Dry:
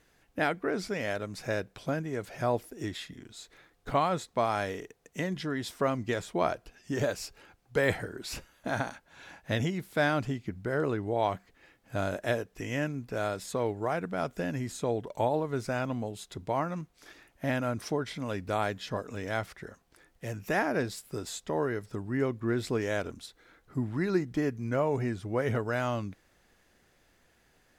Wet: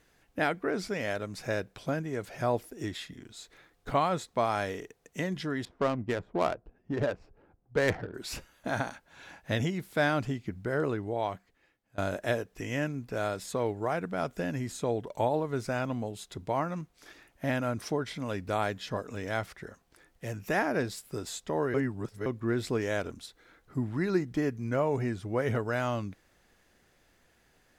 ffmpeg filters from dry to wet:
-filter_complex "[0:a]asettb=1/sr,asplit=3[a][b][c];[a]atrim=end=5.654[d];[b]atrim=start=5.65:end=8.14,asetpts=PTS-STARTPTS,afade=t=in:d=0.004:c=qsin,afade=t=out:st=2.486:d=0.004:c=qsin,adynamicsmooth=sensitivity=3.5:basefreq=690[e];[c]atrim=start=8.136[f];[d][e]acrossfade=d=0.004:c1=hsin:c2=qsin[g];[g][f]acrossfade=d=0.004:c1=qsin:c2=hsin,asplit=4[h][i][j][k];[h]atrim=end=11.98,asetpts=PTS-STARTPTS,afade=t=out:st=10.81:d=1.17:silence=0.0630957[l];[i]atrim=start=11.98:end=21.742,asetpts=PTS-STARTPTS,afade=t=in:d=0.004:c=hsin:silence=0.0630957[m];[j]atrim=start=21.738:end=22.262,asetpts=PTS-STARTPTS,areverse[n];[k]atrim=start=22.258[o];[l][m]concat=n=2:v=0:a=1[p];[p][n]acrossfade=d=0.004:c1=hsin:c2=hsin[q];[q][o]acrossfade=d=0.004:c1=hsin:c2=hsin"

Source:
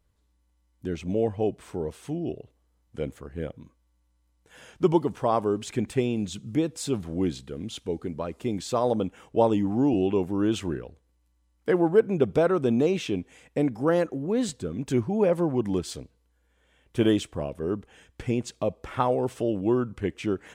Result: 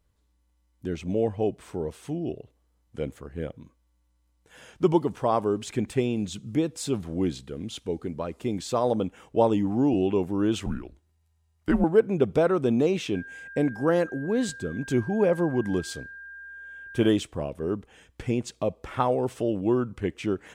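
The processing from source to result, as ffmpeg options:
-filter_complex "[0:a]asettb=1/sr,asplit=3[a][b][c];[a]atrim=end=10.664[d];[b]atrim=start=10.66:end=11.84,asetpts=PTS-STARTPTS,afade=t=in:d=0.004:c=qsin,afade=t=out:st=1.176:d=0.004:c=qsin,afreqshift=-140[e];[c]atrim=start=11.836[f];[d][e]acrossfade=d=0.004:c1=hsin:c2=qsin[g];[g][f]acrossfade=d=0.004:c1=qsin:c2=hsin,asettb=1/sr,asplit=3[h][i][j];[h]atrim=end=13.154[k];[i]atrim=start=13.15:end=17.09,asetpts=PTS-STARTPTS,afade=t=in:d=0.004:c=qsin,afade=t=out:st=3.936:d=0.004:c=qsin,aeval=exprs='val(0)+0.01*sin(2*PI*1600*n/s)':c=same[l];[j]atrim=start=17.086[m];[k][l]acrossfade=d=0.004:c1=hsin:c2=qsin[n];[n][m]acrossfade=d=0.004:c1=qsin:c2=hsin"

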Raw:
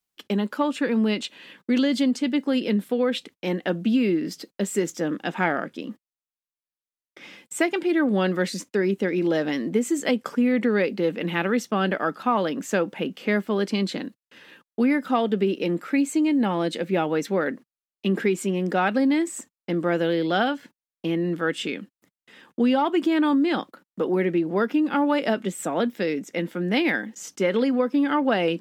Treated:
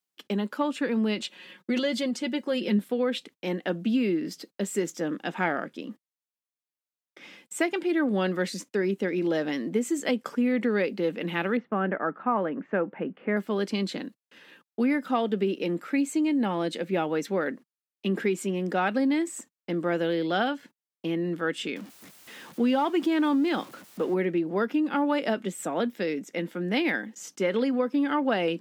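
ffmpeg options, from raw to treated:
-filter_complex "[0:a]asettb=1/sr,asplit=3[a][b][c];[a]atrim=end=1.174[d];[b]atrim=start=1.17:end=2.79,asetpts=PTS-STARTPTS,afade=t=in:d=0.004:c=qsin,afade=t=out:st=1.616:d=0.004:c=qsin,aecho=1:1:5.5:0.65,atrim=end_sample=71442[e];[c]atrim=start=2.786[f];[d][e]acrossfade=d=0.004:c1=hsin:c2=qsin[g];[g][f]acrossfade=d=0.004:c1=qsin:c2=hsin,asettb=1/sr,asplit=3[h][i][j];[h]atrim=end=11.574[k];[i]atrim=start=11.57:end=13.37,asetpts=PTS-STARTPTS,afade=t=in:d=0.004:c=qsin,afade=t=out:st=1.796:d=0.004:c=qsin,lowpass=f=2k:w=0.5412,lowpass=f=2k:w=1.3066[l];[j]atrim=start=13.366[m];[k][l]acrossfade=d=0.004:c1=hsin:c2=qsin[n];[n][m]acrossfade=d=0.004:c1=qsin:c2=hsin,asettb=1/sr,asplit=3[o][p][q];[o]atrim=end=21.764[r];[p]atrim=start=21.76:end=24.14,asetpts=PTS-STARTPTS,afade=t=in:d=0.004:c=qsin,afade=t=out:st=2.376:d=0.004:c=qsin,aeval=exprs='val(0)+0.5*0.0112*sgn(val(0))':c=same[s];[q]atrim=start=24.136[t];[r][s]acrossfade=d=0.004:c1=hsin:c2=qsin[u];[u][t]acrossfade=d=0.004:c1=qsin:c2=hsin,highpass=130,volume=-3.5dB"

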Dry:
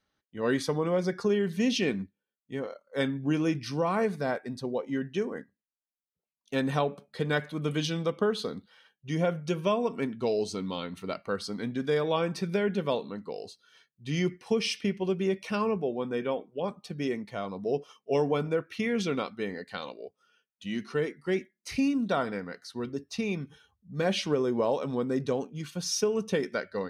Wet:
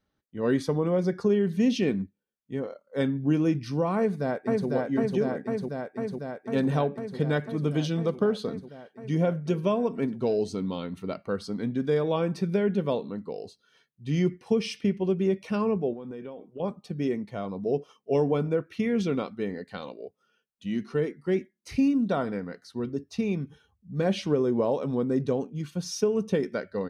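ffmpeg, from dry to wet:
-filter_complex "[0:a]asplit=2[a][b];[b]afade=t=in:st=3.97:d=0.01,afade=t=out:st=4.68:d=0.01,aecho=0:1:500|1000|1500|2000|2500|3000|3500|4000|4500|5000|5500|6000:0.841395|0.673116|0.538493|0.430794|0.344635|0.275708|0.220567|0.176453|0.141163|0.11293|0.0903441|0.0722753[c];[a][c]amix=inputs=2:normalize=0,asettb=1/sr,asplit=3[d][e][f];[d]atrim=end=15.934[g];[e]atrim=start=15.93:end=16.6,asetpts=PTS-STARTPTS,afade=t=in:d=0.004:c=qsin,afade=t=out:st=0.666:d=0.004:c=qsin,acompressor=threshold=-38dB:ratio=6:attack=3.2:release=140:knee=1:detection=peak[h];[f]atrim=start=16.596[i];[g][h]acrossfade=d=0.004:c1=hsin:c2=qsin[j];[j][i]acrossfade=d=0.004:c1=qsin:c2=hsin,tiltshelf=f=700:g=5"

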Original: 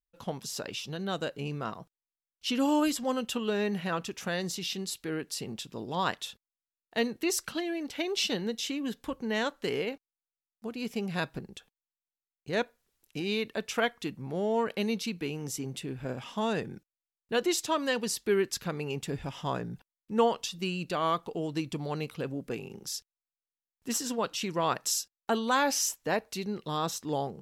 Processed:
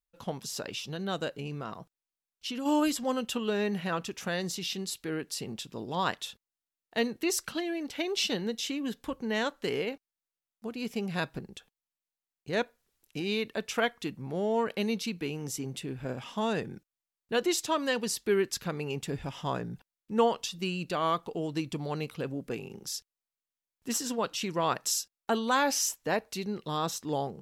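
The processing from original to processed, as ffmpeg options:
-filter_complex "[0:a]asplit=3[a][b][c];[a]afade=t=out:st=1.37:d=0.02[d];[b]acompressor=threshold=-32dB:ratio=6:attack=3.2:release=140:knee=1:detection=peak,afade=t=in:st=1.37:d=0.02,afade=t=out:st=2.65:d=0.02[e];[c]afade=t=in:st=2.65:d=0.02[f];[d][e][f]amix=inputs=3:normalize=0"

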